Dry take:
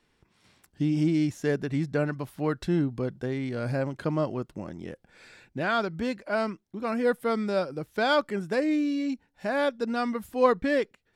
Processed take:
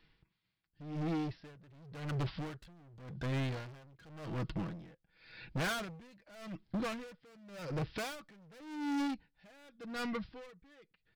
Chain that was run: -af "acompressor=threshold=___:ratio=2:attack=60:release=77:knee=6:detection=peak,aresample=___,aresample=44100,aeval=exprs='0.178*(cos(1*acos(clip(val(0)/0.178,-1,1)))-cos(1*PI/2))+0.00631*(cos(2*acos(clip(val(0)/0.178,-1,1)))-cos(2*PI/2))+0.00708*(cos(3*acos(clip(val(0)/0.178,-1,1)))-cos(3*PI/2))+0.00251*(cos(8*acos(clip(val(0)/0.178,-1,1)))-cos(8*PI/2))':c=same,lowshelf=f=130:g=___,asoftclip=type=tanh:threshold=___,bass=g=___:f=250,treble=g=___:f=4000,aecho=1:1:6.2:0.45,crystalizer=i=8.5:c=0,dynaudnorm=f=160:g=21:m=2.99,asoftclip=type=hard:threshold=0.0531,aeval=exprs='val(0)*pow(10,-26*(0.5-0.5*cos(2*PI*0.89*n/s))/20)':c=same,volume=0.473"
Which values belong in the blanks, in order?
0.0316, 11025, 5.5, 0.0282, 8, -10